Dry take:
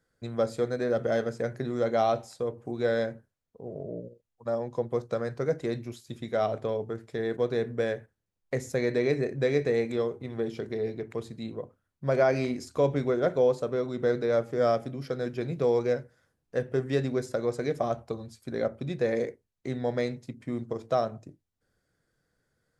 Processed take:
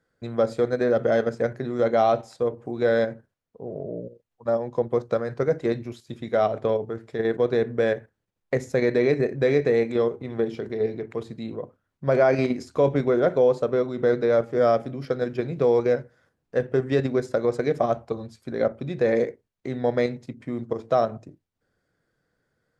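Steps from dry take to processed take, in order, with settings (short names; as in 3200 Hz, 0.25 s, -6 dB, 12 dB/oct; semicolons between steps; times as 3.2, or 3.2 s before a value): LPF 3100 Hz 6 dB/oct; low shelf 100 Hz -7 dB; in parallel at +1.5 dB: level quantiser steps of 15 dB; on the sum: gain +1.5 dB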